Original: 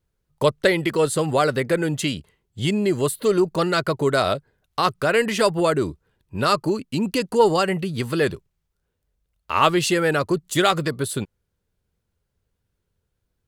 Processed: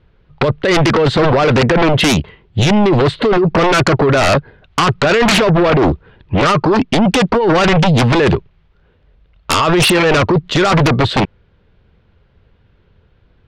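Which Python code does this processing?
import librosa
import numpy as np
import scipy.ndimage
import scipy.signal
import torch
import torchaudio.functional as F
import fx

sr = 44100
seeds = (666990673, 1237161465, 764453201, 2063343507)

y = scipy.signal.sosfilt(scipy.signal.cheby2(4, 70, 12000.0, 'lowpass', fs=sr, output='sos'), x)
y = fx.over_compress(y, sr, threshold_db=-24.0, ratio=-1.0)
y = fx.fold_sine(y, sr, drive_db=15, ceiling_db=-8.0)
y = fx.doppler_dist(y, sr, depth_ms=0.38, at=(5.25, 6.48))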